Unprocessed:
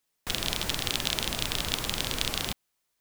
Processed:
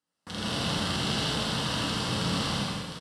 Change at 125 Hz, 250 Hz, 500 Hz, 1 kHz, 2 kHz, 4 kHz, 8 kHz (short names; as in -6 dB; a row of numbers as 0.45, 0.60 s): +7.0, +8.5, +4.0, +5.0, +0.5, -0.5, -4.0 dB